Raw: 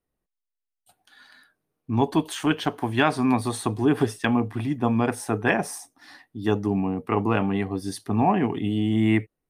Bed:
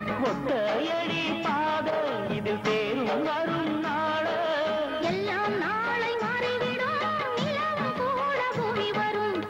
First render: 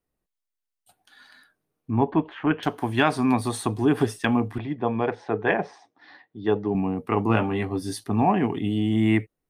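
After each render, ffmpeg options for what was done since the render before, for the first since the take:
-filter_complex "[0:a]asettb=1/sr,asplit=3[a][b][c];[a]atrim=end=1.914[d];[b]atrim=start=1.91:end=2.63,asetpts=PTS-STARTPTS,afade=t=in:d=0.004:c=qsin,afade=t=out:st=0.716:d=0.004:c=qsin,lowpass=f=2.3k:w=0.5412,lowpass=f=2.3k:w=1.3066[e];[c]atrim=start=2.626[f];[d][e]acrossfade=d=0.004:c1=hsin:c2=qsin[g];[g][f]acrossfade=d=0.004:c1=qsin:c2=hsin,asettb=1/sr,asplit=3[h][i][j];[h]atrim=end=4.584[k];[i]atrim=start=4.58:end=6.75,asetpts=PTS-STARTPTS,afade=t=in:d=0.004:c=qsin,afade=t=out:st=2.166:d=0.004:c=qsin,highpass=120,equalizer=f=130:t=q:w=4:g=-4,equalizer=f=250:t=q:w=4:g=-8,equalizer=f=450:t=q:w=4:g=4,equalizer=f=1.3k:t=q:w=4:g=-4,equalizer=f=2.7k:t=q:w=4:g=-5,lowpass=f=3.7k:w=0.5412,lowpass=f=3.7k:w=1.3066[l];[j]atrim=start=6.746[m];[k][l]acrossfade=d=0.004:c1=hsin:c2=qsin[n];[n][m]acrossfade=d=0.004:c1=qsin:c2=hsin,asettb=1/sr,asplit=3[o][p][q];[o]atrim=end=7.284[r];[p]atrim=start=7.28:end=8.04,asetpts=PTS-STARTPTS,afade=t=in:d=0.004:c=qsin,afade=t=out:st=0.756:d=0.004:c=qsin,asplit=2[s][t];[t]adelay=18,volume=-5.5dB[u];[s][u]amix=inputs=2:normalize=0,atrim=end_sample=33516[v];[q]atrim=start=8.036[w];[r][v]acrossfade=d=0.004:c1=hsin:c2=qsin[x];[x][w]acrossfade=d=0.004:c1=qsin:c2=hsin"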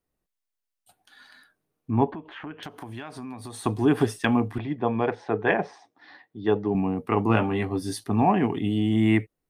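-filter_complex "[0:a]asettb=1/sr,asplit=3[a][b][c];[a]atrim=end=2.144[d];[b]atrim=start=2.14:end=3.66,asetpts=PTS-STARTPTS,afade=t=in:d=0.004:c=qsin,afade=t=out:st=1.516:d=0.004:c=qsin,acompressor=threshold=-35dB:ratio=6:attack=3.2:release=140:knee=1:detection=peak[e];[c]atrim=start=3.656[f];[d][e]acrossfade=d=0.004:c1=hsin:c2=qsin[g];[g][f]acrossfade=d=0.004:c1=qsin:c2=hsin"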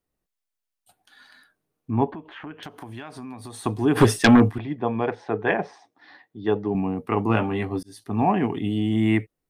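-filter_complex "[0:a]asplit=3[a][b][c];[a]afade=t=out:st=3.95:d=0.02[d];[b]aeval=exprs='0.422*sin(PI/2*2.24*val(0)/0.422)':c=same,afade=t=in:st=3.95:d=0.02,afade=t=out:st=4.49:d=0.02[e];[c]afade=t=in:st=4.49:d=0.02[f];[d][e][f]amix=inputs=3:normalize=0,asplit=2[g][h];[g]atrim=end=7.83,asetpts=PTS-STARTPTS,afade=t=out:st=7.826:d=0.004:c=hsin[i];[h]atrim=start=7.83,asetpts=PTS-STARTPTS,afade=t=in:d=0.41[j];[i][j]concat=n=2:v=0:a=1"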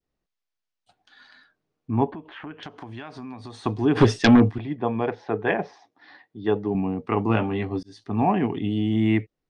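-af "lowpass=f=6k:w=0.5412,lowpass=f=6k:w=1.3066,adynamicequalizer=threshold=0.0141:dfrequency=1300:dqfactor=0.81:tfrequency=1300:tqfactor=0.81:attack=5:release=100:ratio=0.375:range=2.5:mode=cutabove:tftype=bell"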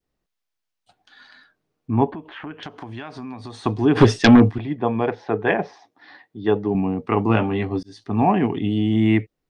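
-af "volume=3.5dB"

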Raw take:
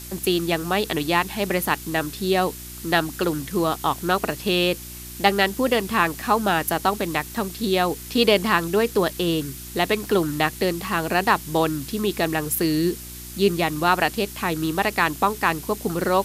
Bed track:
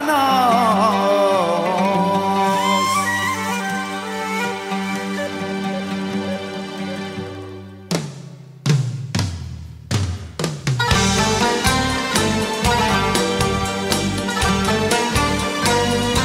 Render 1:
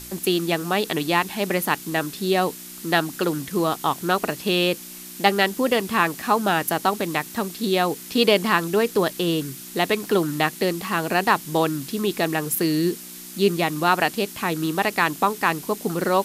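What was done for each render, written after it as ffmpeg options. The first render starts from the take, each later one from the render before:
-af "bandreject=f=60:t=h:w=4,bandreject=f=120:t=h:w=4"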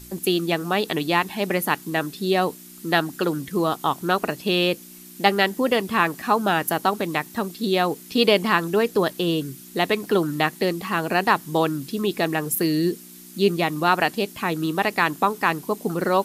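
-af "afftdn=nr=8:nf=-39"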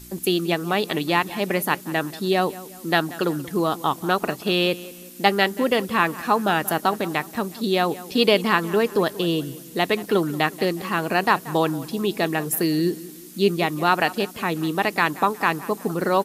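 -filter_complex "[0:a]asplit=2[a][b];[b]adelay=182,lowpass=f=3.7k:p=1,volume=-17.5dB,asplit=2[c][d];[d]adelay=182,lowpass=f=3.7k:p=1,volume=0.43,asplit=2[e][f];[f]adelay=182,lowpass=f=3.7k:p=1,volume=0.43,asplit=2[g][h];[h]adelay=182,lowpass=f=3.7k:p=1,volume=0.43[i];[a][c][e][g][i]amix=inputs=5:normalize=0"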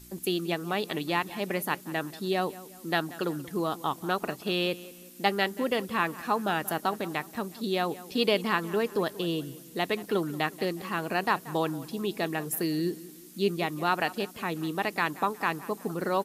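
-af "volume=-7.5dB"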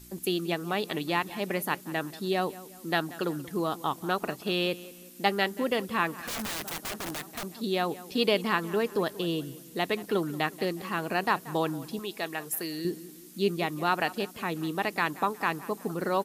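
-filter_complex "[0:a]asettb=1/sr,asplit=3[a][b][c];[a]atrim=end=6.154[d];[b]atrim=start=6.15:end=7.53,asetpts=PTS-STARTPTS,afade=t=in:d=0.004:c=qsin,afade=t=out:st=1.376:d=0.004:c=qsin,aeval=exprs='(mod(28.2*val(0)+1,2)-1)/28.2':c=same[e];[c]atrim=start=7.526[f];[d][e]acrossfade=d=0.004:c1=hsin:c2=qsin[g];[g][f]acrossfade=d=0.004:c1=qsin:c2=hsin,asettb=1/sr,asplit=3[h][i][j];[h]atrim=end=11.994[k];[i]atrim=start=11.99:end=12.85,asetpts=PTS-STARTPTS,afade=t=in:d=0.004:c=qsin,afade=t=out:st=0.856:d=0.004:c=qsin,lowshelf=f=420:g=-11.5[l];[j]atrim=start=12.846[m];[k][l]acrossfade=d=0.004:c1=hsin:c2=qsin[n];[n][m]acrossfade=d=0.004:c1=qsin:c2=hsin"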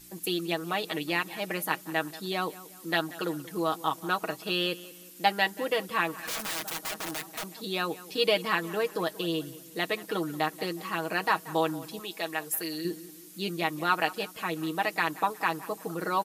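-af "lowshelf=f=270:g=-10,aecho=1:1:6.3:0.65"

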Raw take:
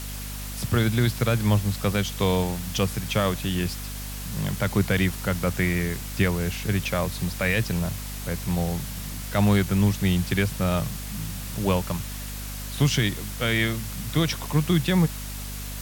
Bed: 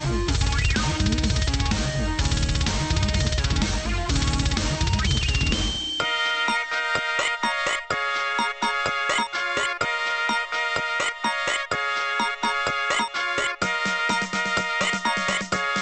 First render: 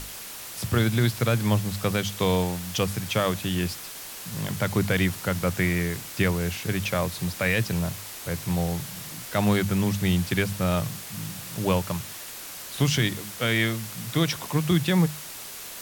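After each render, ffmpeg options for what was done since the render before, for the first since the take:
-af "bandreject=f=50:t=h:w=6,bandreject=f=100:t=h:w=6,bandreject=f=150:t=h:w=6,bandreject=f=200:t=h:w=6,bandreject=f=250:t=h:w=6"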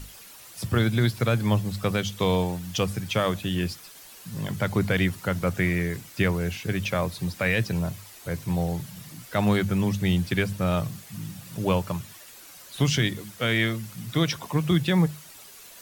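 -af "afftdn=nr=10:nf=-39"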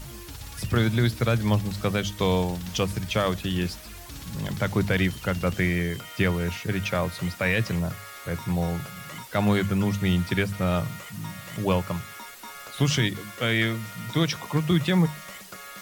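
-filter_complex "[1:a]volume=-18.5dB[a];[0:a][a]amix=inputs=2:normalize=0"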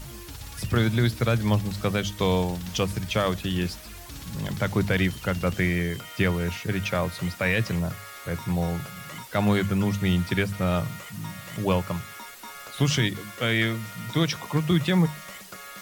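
-af anull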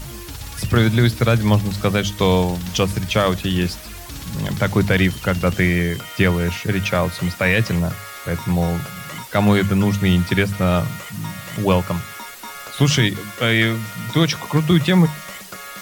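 -af "volume=7dB"

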